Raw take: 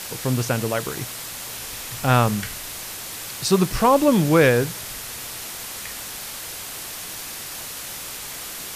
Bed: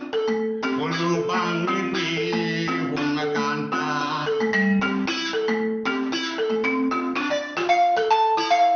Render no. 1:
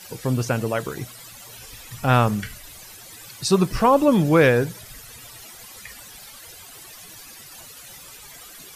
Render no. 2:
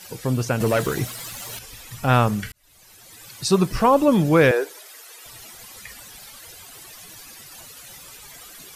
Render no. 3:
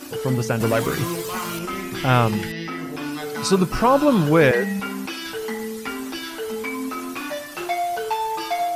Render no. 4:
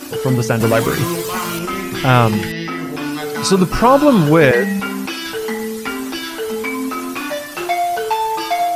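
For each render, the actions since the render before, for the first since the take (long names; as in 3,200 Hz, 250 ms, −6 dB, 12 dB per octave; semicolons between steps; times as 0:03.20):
broadband denoise 14 dB, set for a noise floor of −34 dBFS
0:00.60–0:01.59: leveller curve on the samples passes 2; 0:02.52–0:03.40: fade in; 0:04.51–0:05.26: elliptic high-pass filter 350 Hz, stop band 80 dB
mix in bed −5.5 dB
level +6 dB; brickwall limiter −1 dBFS, peak gain reduction 3 dB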